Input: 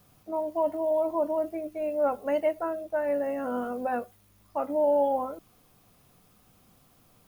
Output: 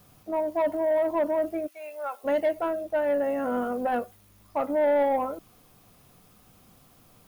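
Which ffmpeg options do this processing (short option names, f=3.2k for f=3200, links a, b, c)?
-filter_complex "[0:a]asplit=3[a][b][c];[a]afade=t=out:st=1.66:d=0.02[d];[b]highpass=1.3k,afade=t=in:st=1.66:d=0.02,afade=t=out:st=2.23:d=0.02[e];[c]afade=t=in:st=2.23:d=0.02[f];[d][e][f]amix=inputs=3:normalize=0,asoftclip=type=tanh:threshold=-22dB,volume=4dB"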